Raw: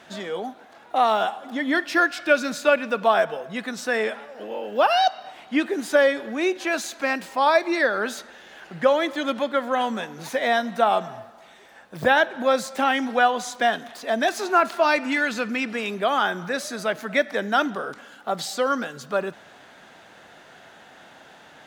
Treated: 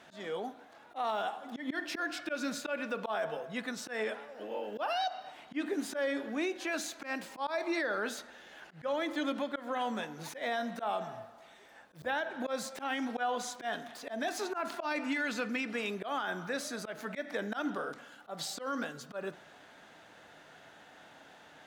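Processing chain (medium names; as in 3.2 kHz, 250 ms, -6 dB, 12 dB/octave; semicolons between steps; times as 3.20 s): FDN reverb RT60 0.45 s, low-frequency decay 1.2×, high-frequency decay 0.35×, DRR 13.5 dB; slow attack 149 ms; peak limiter -17.5 dBFS, peak gain reduction 10.5 dB; trim -7.5 dB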